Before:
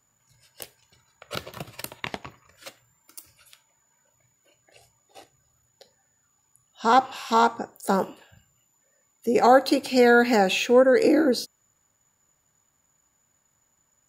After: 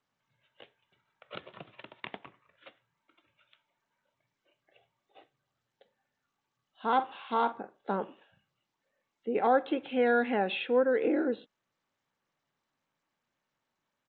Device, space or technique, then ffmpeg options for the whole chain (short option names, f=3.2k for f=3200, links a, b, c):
Bluetooth headset: -filter_complex "[0:a]equalizer=f=91:w=0.45:g=2.5,asplit=3[a][b][c];[a]afade=t=out:st=6.98:d=0.02[d];[b]asplit=2[e][f];[f]adelay=46,volume=-13dB[g];[e][g]amix=inputs=2:normalize=0,afade=t=in:st=6.98:d=0.02,afade=t=out:st=7.86:d=0.02[h];[c]afade=t=in:st=7.86:d=0.02[i];[d][h][i]amix=inputs=3:normalize=0,highpass=200,aresample=8000,aresample=44100,volume=-9dB" -ar 16000 -c:a sbc -b:a 64k